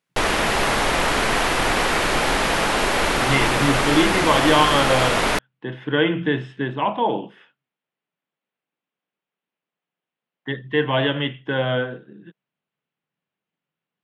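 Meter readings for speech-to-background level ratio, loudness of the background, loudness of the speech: -2.0 dB, -19.5 LUFS, -21.5 LUFS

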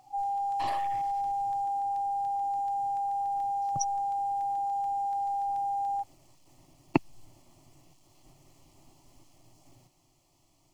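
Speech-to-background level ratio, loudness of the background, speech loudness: -5.0 dB, -31.0 LUFS, -36.0 LUFS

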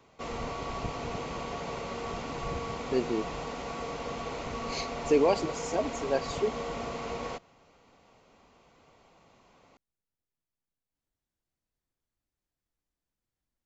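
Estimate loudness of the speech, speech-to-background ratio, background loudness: -30.5 LUFS, 6.0 dB, -36.5 LUFS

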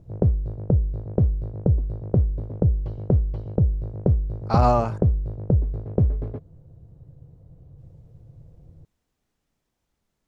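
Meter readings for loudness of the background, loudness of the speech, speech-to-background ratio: -24.5 LUFS, -23.0 LUFS, 1.5 dB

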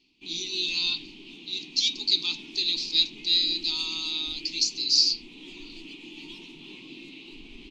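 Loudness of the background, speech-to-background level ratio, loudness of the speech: -43.5 LUFS, 18.5 dB, -25.0 LUFS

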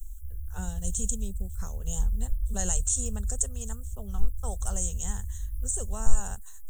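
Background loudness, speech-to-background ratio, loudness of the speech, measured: -37.0 LUFS, 4.0 dB, -33.0 LUFS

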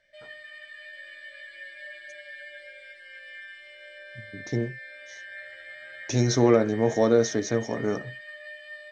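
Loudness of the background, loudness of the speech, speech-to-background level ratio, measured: -42.0 LUFS, -24.5 LUFS, 17.5 dB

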